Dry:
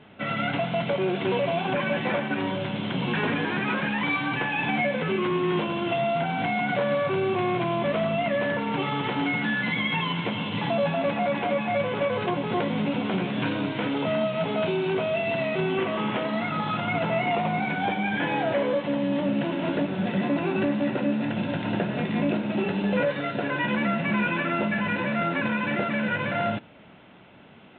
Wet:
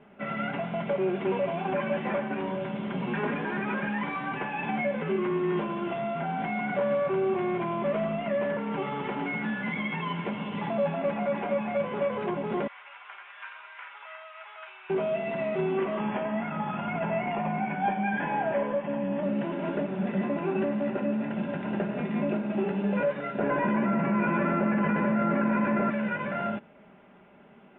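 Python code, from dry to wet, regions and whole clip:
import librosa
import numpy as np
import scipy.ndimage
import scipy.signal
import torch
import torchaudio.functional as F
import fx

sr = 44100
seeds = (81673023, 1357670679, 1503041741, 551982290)

y = fx.chain(x, sr, fx.highpass(hz=1200.0, slope=24),
    fx.high_shelf(hz=3800.0, db=-11.0), at=(12.67, 14.9))
y = fx.chain(y, sr, fx.steep_lowpass(hz=3400.0, slope=96),
    fx.comb(ms=1.2, depth=0.3), at=(15.99, 19.23))
y = fx.chain(y, sr, fx.high_shelf(hz=2100.0, db=-12.0),
    fx.echo_bbd(ms=117, stages=2048, feedback_pct=78, wet_db=-6.0),
    fx.env_flatten(amount_pct=100), at=(23.39, 25.9))
y = scipy.signal.sosfilt(scipy.signal.bessel(8, 1800.0, 'lowpass', norm='mag', fs=sr, output='sos'), y)
y = fx.peak_eq(y, sr, hz=110.0, db=-7.5, octaves=1.1)
y = y + 0.47 * np.pad(y, (int(5.0 * sr / 1000.0), 0))[:len(y)]
y = y * 10.0 ** (-3.0 / 20.0)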